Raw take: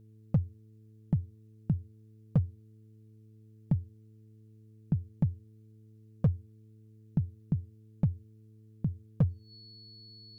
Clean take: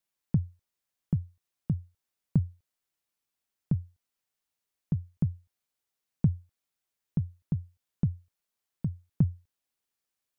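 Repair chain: clip repair -18.5 dBFS; de-hum 108.7 Hz, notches 4; notch 4400 Hz, Q 30

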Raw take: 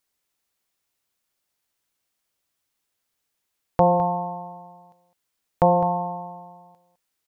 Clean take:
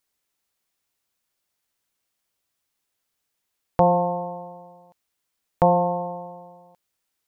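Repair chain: inverse comb 0.208 s -13 dB

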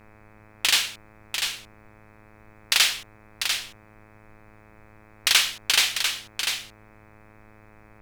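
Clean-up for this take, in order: de-hum 107.1 Hz, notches 24; expander -45 dBFS, range -21 dB; inverse comb 0.695 s -6.5 dB

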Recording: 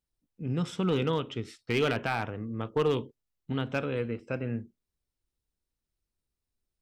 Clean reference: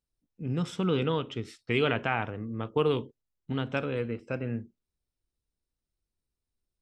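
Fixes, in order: clip repair -19.5 dBFS

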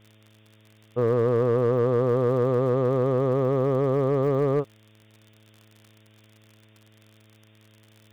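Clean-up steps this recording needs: clip repair -15.5 dBFS; de-click; de-hum 108 Hz, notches 6; noise print and reduce 15 dB

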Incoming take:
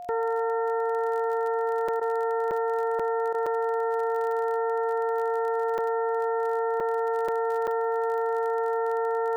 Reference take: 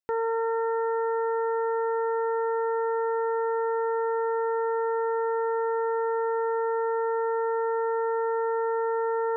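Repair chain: de-click; notch 710 Hz, Q 30; interpolate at 1.88/2.51/2.99/3.46/5.78/6.8/7.28/7.67, 5.6 ms; interpolate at 2/3.33, 12 ms

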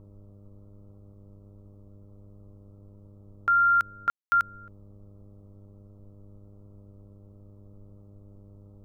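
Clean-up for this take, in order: de-hum 100.7 Hz, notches 6; room tone fill 4.1–4.32; noise print and reduce 23 dB

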